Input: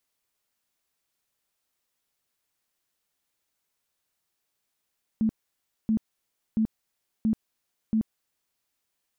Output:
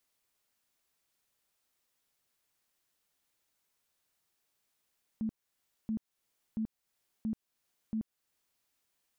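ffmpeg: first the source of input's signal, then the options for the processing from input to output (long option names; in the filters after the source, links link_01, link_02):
-f lavfi -i "aevalsrc='0.1*sin(2*PI*220*mod(t,0.68))*lt(mod(t,0.68),18/220)':duration=3.4:sample_rate=44100"
-af "alimiter=level_in=6dB:limit=-24dB:level=0:latency=1:release=340,volume=-6dB"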